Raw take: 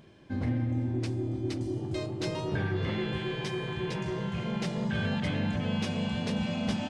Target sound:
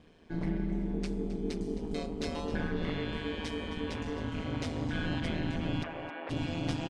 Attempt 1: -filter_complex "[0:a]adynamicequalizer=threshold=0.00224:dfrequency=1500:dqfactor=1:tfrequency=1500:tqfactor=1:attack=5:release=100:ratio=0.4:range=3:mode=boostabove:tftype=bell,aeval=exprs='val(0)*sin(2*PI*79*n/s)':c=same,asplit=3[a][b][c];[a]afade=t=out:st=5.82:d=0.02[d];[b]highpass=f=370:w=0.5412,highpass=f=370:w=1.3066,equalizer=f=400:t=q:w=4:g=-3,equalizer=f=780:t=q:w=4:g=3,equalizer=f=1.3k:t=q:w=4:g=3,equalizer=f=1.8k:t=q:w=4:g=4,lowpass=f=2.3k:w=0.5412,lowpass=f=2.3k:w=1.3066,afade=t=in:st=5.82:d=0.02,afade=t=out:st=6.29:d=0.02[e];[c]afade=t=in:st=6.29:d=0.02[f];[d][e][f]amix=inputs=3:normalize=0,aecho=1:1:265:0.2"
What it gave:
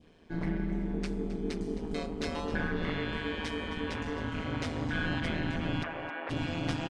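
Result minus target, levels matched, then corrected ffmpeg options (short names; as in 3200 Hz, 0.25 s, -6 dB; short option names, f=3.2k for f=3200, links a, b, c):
2000 Hz band +4.0 dB
-filter_complex "[0:a]aeval=exprs='val(0)*sin(2*PI*79*n/s)':c=same,asplit=3[a][b][c];[a]afade=t=out:st=5.82:d=0.02[d];[b]highpass=f=370:w=0.5412,highpass=f=370:w=1.3066,equalizer=f=400:t=q:w=4:g=-3,equalizer=f=780:t=q:w=4:g=3,equalizer=f=1.3k:t=q:w=4:g=3,equalizer=f=1.8k:t=q:w=4:g=4,lowpass=f=2.3k:w=0.5412,lowpass=f=2.3k:w=1.3066,afade=t=in:st=5.82:d=0.02,afade=t=out:st=6.29:d=0.02[e];[c]afade=t=in:st=6.29:d=0.02[f];[d][e][f]amix=inputs=3:normalize=0,aecho=1:1:265:0.2"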